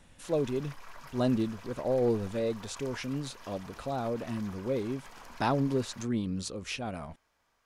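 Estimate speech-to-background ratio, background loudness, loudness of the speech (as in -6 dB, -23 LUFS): 17.5 dB, -50.5 LUFS, -33.0 LUFS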